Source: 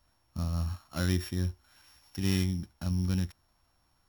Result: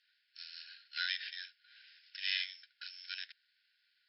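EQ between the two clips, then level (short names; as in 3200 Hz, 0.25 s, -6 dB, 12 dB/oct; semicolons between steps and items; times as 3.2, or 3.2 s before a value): brick-wall FIR band-pass 1400–5400 Hz; air absorption 71 m; high shelf 2900 Hz +12 dB; +1.0 dB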